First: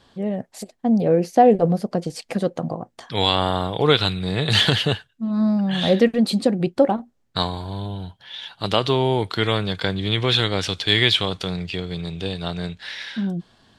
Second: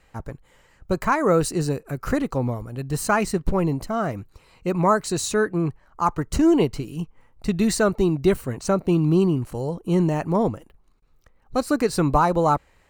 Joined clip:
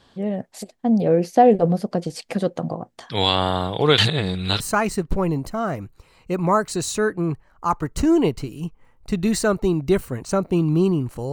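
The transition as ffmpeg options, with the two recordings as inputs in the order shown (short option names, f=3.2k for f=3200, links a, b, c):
-filter_complex "[0:a]apad=whole_dur=11.32,atrim=end=11.32,asplit=2[a][b];[a]atrim=end=3.982[c];[b]atrim=start=3.978:end=4.602,asetpts=PTS-STARTPTS,areverse[d];[1:a]atrim=start=2.958:end=9.68[e];[c][d]acrossfade=d=0.004:c1=hsin:c2=hsin[f];[f][e]acrossfade=d=0.004:c1=hsin:c2=hsin"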